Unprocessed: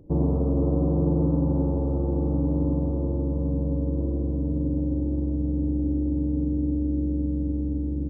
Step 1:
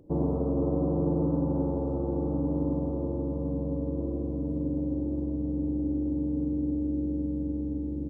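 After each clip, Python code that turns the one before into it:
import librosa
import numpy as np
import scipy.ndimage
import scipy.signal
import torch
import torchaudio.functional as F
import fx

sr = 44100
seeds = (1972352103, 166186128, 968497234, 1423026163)

y = fx.low_shelf(x, sr, hz=170.0, db=-10.0)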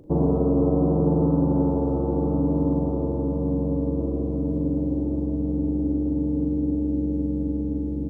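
y = fx.doubler(x, sr, ms=39.0, db=-9)
y = y * librosa.db_to_amplitude(6.5)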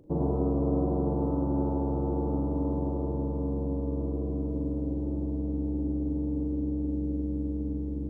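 y = x + 10.0 ** (-4.0 / 20.0) * np.pad(x, (int(103 * sr / 1000.0), 0))[:len(x)]
y = y * librosa.db_to_amplitude(-7.0)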